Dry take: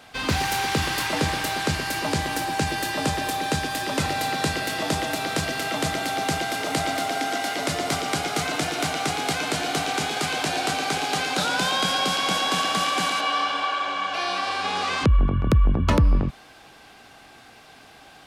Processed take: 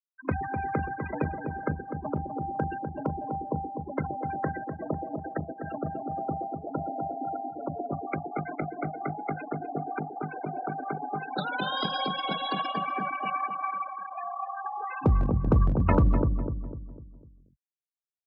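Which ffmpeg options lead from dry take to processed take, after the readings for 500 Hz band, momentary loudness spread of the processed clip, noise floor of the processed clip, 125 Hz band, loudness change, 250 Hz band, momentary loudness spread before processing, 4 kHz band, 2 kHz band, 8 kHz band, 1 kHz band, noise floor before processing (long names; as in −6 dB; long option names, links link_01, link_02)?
−5.0 dB, 10 LU, −66 dBFS, −3.0 dB, −7.0 dB, −3.5 dB, 5 LU, −14.5 dB, −13.0 dB, below −40 dB, −6.0 dB, −49 dBFS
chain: -filter_complex "[0:a]aeval=exprs='0.299*(cos(1*acos(clip(val(0)/0.299,-1,1)))-cos(1*PI/2))+0.0531*(cos(3*acos(clip(val(0)/0.299,-1,1)))-cos(3*PI/2))':channel_layout=same,afwtdn=0.0251,afftfilt=real='re*gte(hypot(re,im),0.0708)':imag='im*gte(hypot(re,im),0.0708)':win_size=1024:overlap=0.75,acrossover=split=700|1200[link_01][link_02][link_03];[link_01]aeval=exprs='clip(val(0),-1,0.126)':channel_layout=same[link_04];[link_04][link_02][link_03]amix=inputs=3:normalize=0,highpass=49,asplit=2[link_05][link_06];[link_06]adelay=250,lowpass=frequency=900:poles=1,volume=-5.5dB,asplit=2[link_07][link_08];[link_08]adelay=250,lowpass=frequency=900:poles=1,volume=0.45,asplit=2[link_09][link_10];[link_10]adelay=250,lowpass=frequency=900:poles=1,volume=0.45,asplit=2[link_11][link_12];[link_12]adelay=250,lowpass=frequency=900:poles=1,volume=0.45,asplit=2[link_13][link_14];[link_14]adelay=250,lowpass=frequency=900:poles=1,volume=0.45[link_15];[link_07][link_09][link_11][link_13][link_15]amix=inputs=5:normalize=0[link_16];[link_05][link_16]amix=inputs=2:normalize=0"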